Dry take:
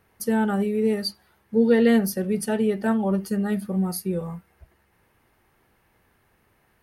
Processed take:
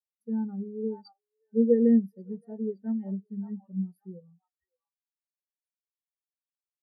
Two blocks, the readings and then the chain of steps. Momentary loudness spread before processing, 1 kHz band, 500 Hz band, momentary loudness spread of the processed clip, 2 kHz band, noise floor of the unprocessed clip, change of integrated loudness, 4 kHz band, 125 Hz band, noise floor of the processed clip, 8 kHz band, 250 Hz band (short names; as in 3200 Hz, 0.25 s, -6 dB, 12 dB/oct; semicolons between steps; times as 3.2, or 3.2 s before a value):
11 LU, under -20 dB, -7.0 dB, 18 LU, under -25 dB, -65 dBFS, -5.5 dB, under -25 dB, -9.5 dB, under -85 dBFS, under -40 dB, -5.0 dB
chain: delay with a stepping band-pass 0.568 s, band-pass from 1000 Hz, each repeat 1.4 oct, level -1 dB; spectral expander 2.5:1; gain -3 dB